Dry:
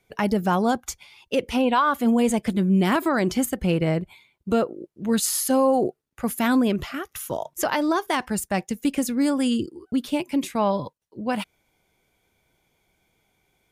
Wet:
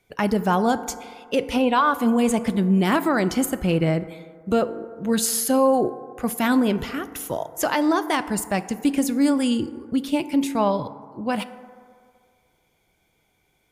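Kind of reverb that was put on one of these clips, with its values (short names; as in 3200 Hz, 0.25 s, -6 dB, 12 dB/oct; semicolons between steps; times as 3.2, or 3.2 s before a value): FDN reverb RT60 2.1 s, low-frequency decay 0.75×, high-frequency decay 0.3×, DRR 12 dB; gain +1 dB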